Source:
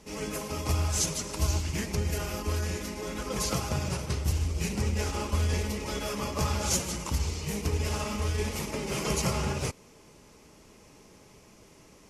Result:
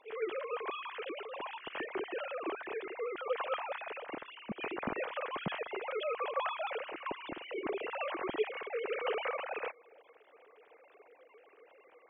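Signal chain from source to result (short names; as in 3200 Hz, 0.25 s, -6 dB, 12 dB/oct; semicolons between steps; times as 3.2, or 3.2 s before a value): sine-wave speech; band noise 310–770 Hz -63 dBFS; gain -8.5 dB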